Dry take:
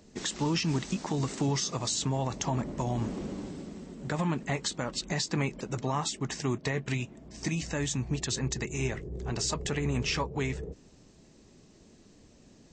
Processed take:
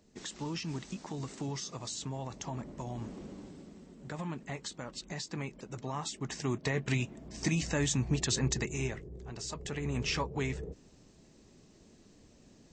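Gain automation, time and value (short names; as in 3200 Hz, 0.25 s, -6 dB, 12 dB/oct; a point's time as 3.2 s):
5.69 s -9 dB
6.99 s +1 dB
8.55 s +1 dB
9.33 s -11 dB
10.1 s -2.5 dB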